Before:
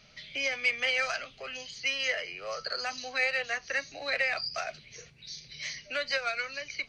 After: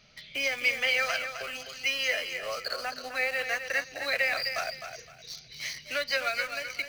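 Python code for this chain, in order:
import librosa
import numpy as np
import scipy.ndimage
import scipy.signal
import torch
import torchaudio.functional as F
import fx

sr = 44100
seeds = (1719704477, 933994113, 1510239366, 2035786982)

p1 = fx.high_shelf(x, sr, hz=3500.0, db=-10.0, at=(2.73, 3.39))
p2 = fx.quant_dither(p1, sr, seeds[0], bits=6, dither='none')
p3 = p1 + (p2 * librosa.db_to_amplitude(-7.5))
p4 = fx.echo_feedback(p3, sr, ms=258, feedback_pct=26, wet_db=-8.5)
y = p4 * librosa.db_to_amplitude(-1.5)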